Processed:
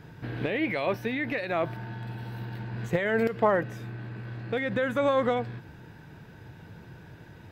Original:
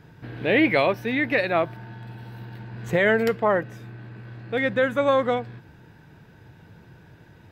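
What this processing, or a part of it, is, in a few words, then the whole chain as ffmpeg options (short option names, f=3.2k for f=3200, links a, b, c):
de-esser from a sidechain: -filter_complex "[0:a]asplit=2[a][b];[b]highpass=6.1k,apad=whole_len=331410[c];[a][c]sidechaincompress=threshold=-53dB:ratio=3:attack=1:release=67,volume=2dB"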